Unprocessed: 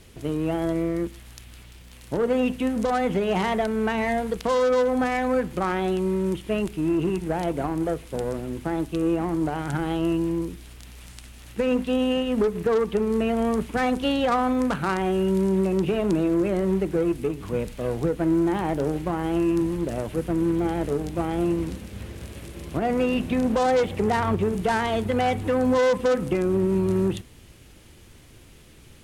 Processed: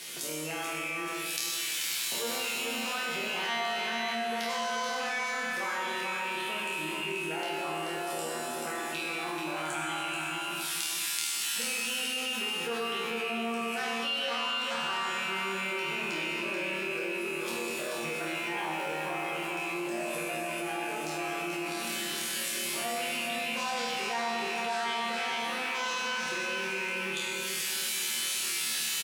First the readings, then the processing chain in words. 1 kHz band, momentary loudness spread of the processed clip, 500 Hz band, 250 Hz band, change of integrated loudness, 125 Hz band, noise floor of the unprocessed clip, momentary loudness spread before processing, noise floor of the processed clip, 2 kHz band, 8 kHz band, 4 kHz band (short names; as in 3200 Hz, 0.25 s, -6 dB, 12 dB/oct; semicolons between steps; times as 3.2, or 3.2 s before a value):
-5.0 dB, 4 LU, -13.0 dB, -16.5 dB, -7.0 dB, -20.0 dB, -49 dBFS, 8 LU, -35 dBFS, +3.0 dB, +11.0 dB, +7.0 dB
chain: rattling part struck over -25 dBFS, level -23 dBFS; recorder AGC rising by 53 dB/s; steep high-pass 150 Hz 48 dB/oct; bell 240 Hz -7 dB 0.26 oct; spectral noise reduction 8 dB; tilt shelf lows -9.5 dB, about 1100 Hz; resonator bank D#2 fifth, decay 0.6 s; on a send: feedback echo 0.434 s, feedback 46%, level -6.5 dB; on the sum: Schroeder reverb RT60 2 s, combs from 31 ms, DRR -0.5 dB; fast leveller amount 70%